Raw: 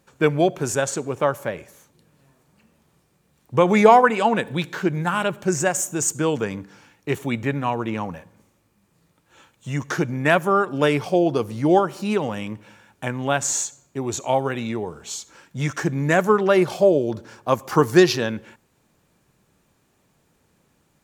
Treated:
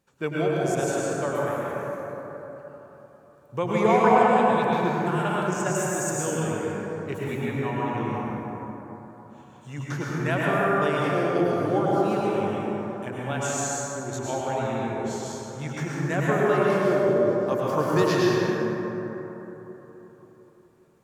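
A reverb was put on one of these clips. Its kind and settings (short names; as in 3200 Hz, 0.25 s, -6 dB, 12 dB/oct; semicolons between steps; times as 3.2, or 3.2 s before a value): plate-style reverb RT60 3.9 s, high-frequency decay 0.35×, pre-delay 90 ms, DRR -6.5 dB; gain -11 dB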